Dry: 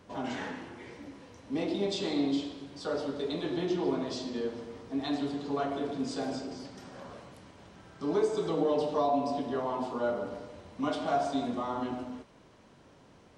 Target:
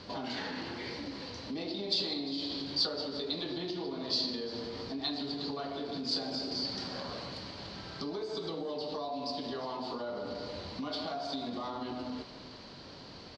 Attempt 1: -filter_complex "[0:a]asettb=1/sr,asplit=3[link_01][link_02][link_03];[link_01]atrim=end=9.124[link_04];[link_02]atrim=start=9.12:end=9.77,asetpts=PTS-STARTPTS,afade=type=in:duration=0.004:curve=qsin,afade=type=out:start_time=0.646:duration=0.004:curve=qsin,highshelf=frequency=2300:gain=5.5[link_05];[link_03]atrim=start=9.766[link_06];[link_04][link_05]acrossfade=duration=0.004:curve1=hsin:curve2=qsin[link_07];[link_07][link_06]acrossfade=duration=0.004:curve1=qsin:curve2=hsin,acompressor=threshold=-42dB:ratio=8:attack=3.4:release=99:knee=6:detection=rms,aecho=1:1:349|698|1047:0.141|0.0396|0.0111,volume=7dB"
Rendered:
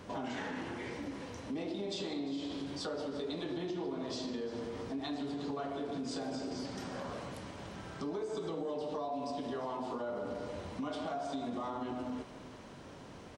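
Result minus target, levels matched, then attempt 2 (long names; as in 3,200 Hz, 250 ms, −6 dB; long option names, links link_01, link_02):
4,000 Hz band −9.0 dB
-filter_complex "[0:a]asettb=1/sr,asplit=3[link_01][link_02][link_03];[link_01]atrim=end=9.124[link_04];[link_02]atrim=start=9.12:end=9.77,asetpts=PTS-STARTPTS,afade=type=in:duration=0.004:curve=qsin,afade=type=out:start_time=0.646:duration=0.004:curve=qsin,highshelf=frequency=2300:gain=5.5[link_05];[link_03]atrim=start=9.766[link_06];[link_04][link_05]acrossfade=duration=0.004:curve1=hsin:curve2=qsin[link_07];[link_07][link_06]acrossfade=duration=0.004:curve1=qsin:curve2=hsin,acompressor=threshold=-42dB:ratio=8:attack=3.4:release=99:knee=6:detection=rms,lowpass=frequency=4500:width_type=q:width=9.2,aecho=1:1:349|698|1047:0.141|0.0396|0.0111,volume=7dB"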